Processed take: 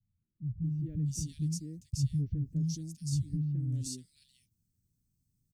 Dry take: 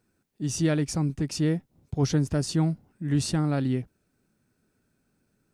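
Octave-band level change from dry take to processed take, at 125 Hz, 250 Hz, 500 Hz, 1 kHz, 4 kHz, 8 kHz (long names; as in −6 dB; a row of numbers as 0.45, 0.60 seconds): −4.5 dB, −10.5 dB, below −25 dB, below −40 dB, −10.5 dB, −6.5 dB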